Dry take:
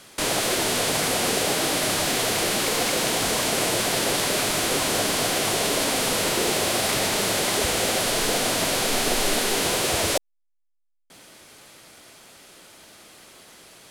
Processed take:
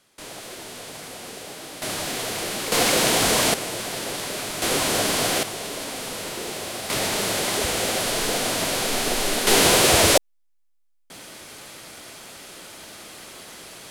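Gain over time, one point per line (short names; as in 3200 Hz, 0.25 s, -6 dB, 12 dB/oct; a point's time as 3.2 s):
-14.5 dB
from 1.82 s -5 dB
from 2.72 s +4 dB
from 3.54 s -6.5 dB
from 4.62 s +1 dB
from 5.43 s -8.5 dB
from 6.9 s -1 dB
from 9.47 s +7 dB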